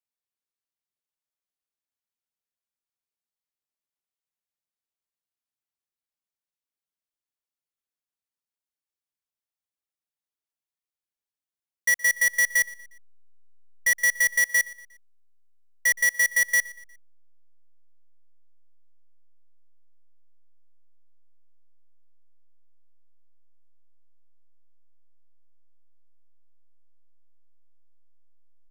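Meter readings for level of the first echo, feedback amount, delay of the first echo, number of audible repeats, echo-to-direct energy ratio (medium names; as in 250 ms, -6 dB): -20.5 dB, 45%, 119 ms, 3, -19.5 dB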